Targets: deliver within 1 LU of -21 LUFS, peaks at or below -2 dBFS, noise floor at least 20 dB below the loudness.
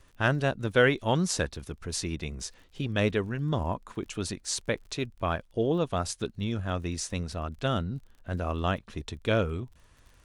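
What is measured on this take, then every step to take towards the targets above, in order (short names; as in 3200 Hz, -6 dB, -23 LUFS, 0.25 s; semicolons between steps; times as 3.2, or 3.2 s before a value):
ticks 32/s; loudness -30.0 LUFS; peak -9.0 dBFS; loudness target -21.0 LUFS
-> de-click; gain +9 dB; limiter -2 dBFS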